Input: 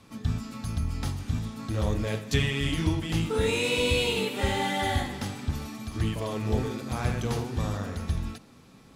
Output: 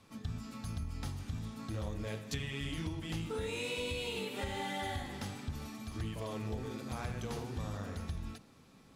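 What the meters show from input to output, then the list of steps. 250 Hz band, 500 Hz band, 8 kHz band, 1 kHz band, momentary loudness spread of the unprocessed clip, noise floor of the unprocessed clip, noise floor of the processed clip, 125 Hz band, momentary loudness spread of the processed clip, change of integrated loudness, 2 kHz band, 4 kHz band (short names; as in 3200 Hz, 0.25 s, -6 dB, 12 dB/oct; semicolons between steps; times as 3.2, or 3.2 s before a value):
-10.5 dB, -11.0 dB, -10.0 dB, -10.0 dB, 9 LU, -53 dBFS, -60 dBFS, -11.0 dB, 6 LU, -11.0 dB, -11.0 dB, -11.0 dB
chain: notches 60/120/180/240/300/360/420 Hz; compressor, threshold -28 dBFS, peak gain reduction 8.5 dB; gain -6.5 dB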